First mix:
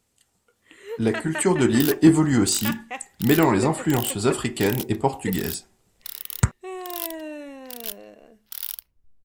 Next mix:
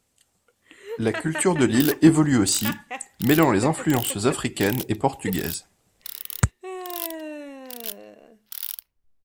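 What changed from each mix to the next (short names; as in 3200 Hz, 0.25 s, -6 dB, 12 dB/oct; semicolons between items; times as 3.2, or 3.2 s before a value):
second sound: add low shelf 410 Hz -9 dB; reverb: off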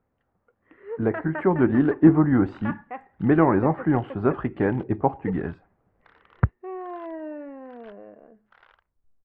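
master: add LPF 1600 Hz 24 dB/oct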